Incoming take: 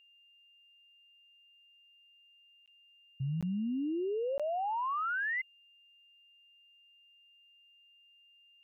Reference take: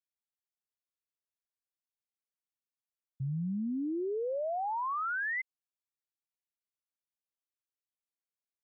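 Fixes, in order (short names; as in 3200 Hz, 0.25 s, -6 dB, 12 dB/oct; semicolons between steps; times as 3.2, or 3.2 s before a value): notch 2800 Hz, Q 30; interpolate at 2.66/3.41/4.38, 16 ms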